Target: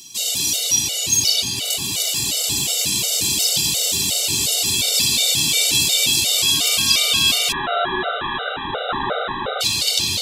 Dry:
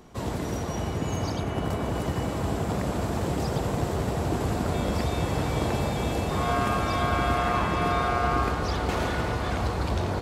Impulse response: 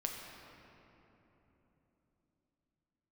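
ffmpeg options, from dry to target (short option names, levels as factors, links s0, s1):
-filter_complex "[0:a]highpass=89,highshelf=f=1900:t=q:w=1.5:g=12,aexciter=amount=9.1:drive=4.6:freq=2700[s0];[1:a]atrim=start_sample=2205,asetrate=39690,aresample=44100[s1];[s0][s1]afir=irnorm=-1:irlink=0,asettb=1/sr,asplit=3[s2][s3][s4];[s2]atrim=end=7.524[s5];[s3]atrim=start=7.52:end=9.61,asetpts=PTS-STARTPTS,afade=t=in:d=0.004:c=qsin,afade=t=out:st=2.086:d=0.004:c=qsin,lowpass=f=3400:t=q:w=0.5098,lowpass=f=3400:t=q:w=0.6013,lowpass=f=3400:t=q:w=0.9,lowpass=f=3400:t=q:w=2.563,afreqshift=-4000[s6];[s4]atrim=start=9.606[s7];[s5][s6]acrossfade=d=0.004:c1=hsin:c2=qsin[s8];[s8][s7]acrossfade=d=0.004:c1=qsin:c2=hsin,afftfilt=real='re*gt(sin(2*PI*2.8*pts/sr)*(1-2*mod(floor(b*sr/1024/390),2)),0)':imag='im*gt(sin(2*PI*2.8*pts/sr)*(1-2*mod(floor(b*sr/1024/390),2)),0)':win_size=1024:overlap=0.75,volume=0.596"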